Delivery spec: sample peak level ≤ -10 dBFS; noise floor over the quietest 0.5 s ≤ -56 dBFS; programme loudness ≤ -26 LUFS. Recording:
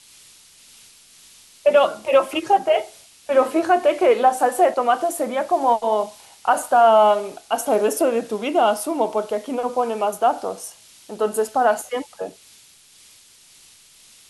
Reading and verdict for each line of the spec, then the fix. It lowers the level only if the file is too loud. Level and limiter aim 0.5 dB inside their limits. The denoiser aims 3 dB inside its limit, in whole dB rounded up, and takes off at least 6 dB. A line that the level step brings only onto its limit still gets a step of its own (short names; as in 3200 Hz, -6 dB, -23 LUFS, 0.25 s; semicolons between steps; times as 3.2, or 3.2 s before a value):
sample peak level -4.0 dBFS: fail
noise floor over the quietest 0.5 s -50 dBFS: fail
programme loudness -19.5 LUFS: fail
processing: gain -7 dB